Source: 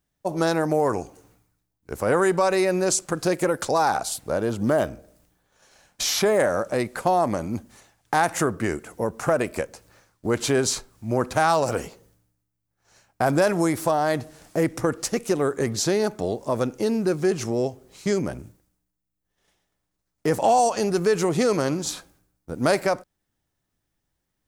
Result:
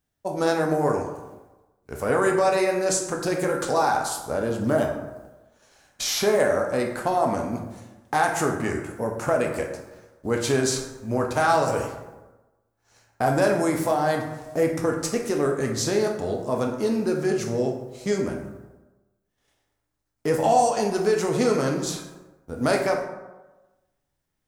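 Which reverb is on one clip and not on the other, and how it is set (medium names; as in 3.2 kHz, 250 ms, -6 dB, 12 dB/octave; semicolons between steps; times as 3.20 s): plate-style reverb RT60 1.1 s, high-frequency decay 0.5×, DRR 1 dB; trim -3 dB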